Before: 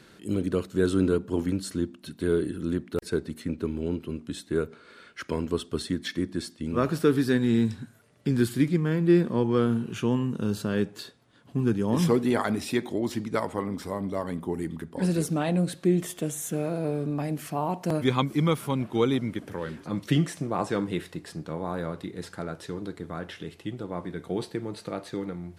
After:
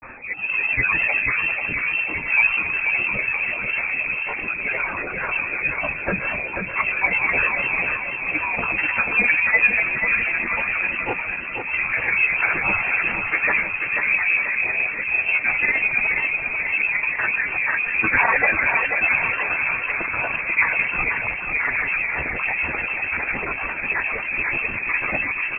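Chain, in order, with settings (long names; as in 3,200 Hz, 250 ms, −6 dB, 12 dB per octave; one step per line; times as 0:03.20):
rectangular room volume 89 cubic metres, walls mixed, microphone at 2.1 metres
rotating-speaker cabinet horn 0.75 Hz, later 8 Hz, at 0:19.38
transient designer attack −2 dB, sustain +8 dB
high-pass filter 510 Hz 24 dB per octave
granular cloud, pitch spread up and down by 12 semitones
reversed playback
upward compression, threshold −24 dBFS
reversed playback
voice inversion scrambler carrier 2,900 Hz
on a send: repeating echo 488 ms, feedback 51%, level −5.5 dB
on the sum: level +5.5 dB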